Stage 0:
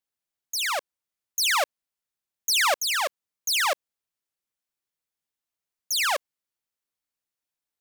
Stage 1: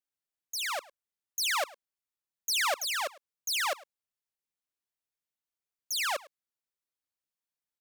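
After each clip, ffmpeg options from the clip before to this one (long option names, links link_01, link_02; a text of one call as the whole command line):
ffmpeg -i in.wav -filter_complex "[0:a]asplit=2[link_01][link_02];[link_02]adelay=105,volume=-21dB,highshelf=frequency=4000:gain=-2.36[link_03];[link_01][link_03]amix=inputs=2:normalize=0,volume=-6.5dB" out.wav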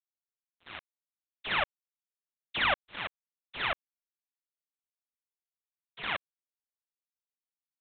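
ffmpeg -i in.wav -af "flanger=delay=6.4:depth=9:regen=74:speed=1.9:shape=triangular,aresample=8000,acrusher=bits=4:mix=0:aa=0.5,aresample=44100,volume=6.5dB" out.wav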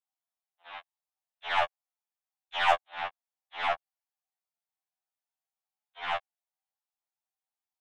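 ffmpeg -i in.wav -af "highpass=frequency=750:width_type=q:width=4.9,aeval=exprs='0.316*(cos(1*acos(clip(val(0)/0.316,-1,1)))-cos(1*PI/2))+0.0126*(cos(6*acos(clip(val(0)/0.316,-1,1)))-cos(6*PI/2))':channel_layout=same,afftfilt=real='re*2*eq(mod(b,4),0)':imag='im*2*eq(mod(b,4),0)':win_size=2048:overlap=0.75" out.wav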